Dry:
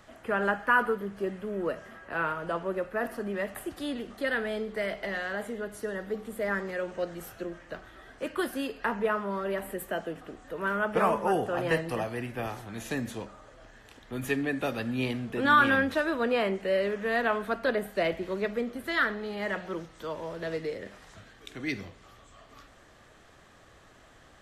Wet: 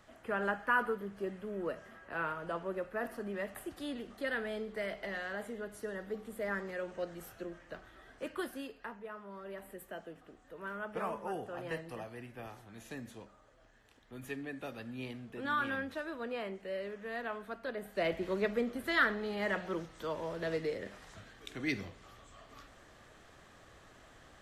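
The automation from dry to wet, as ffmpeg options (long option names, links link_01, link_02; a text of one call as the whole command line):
ffmpeg -i in.wav -af "volume=10.5dB,afade=type=out:start_time=8.23:duration=0.79:silence=0.237137,afade=type=in:start_time=9.02:duration=0.69:silence=0.473151,afade=type=in:start_time=17.75:duration=0.51:silence=0.298538" out.wav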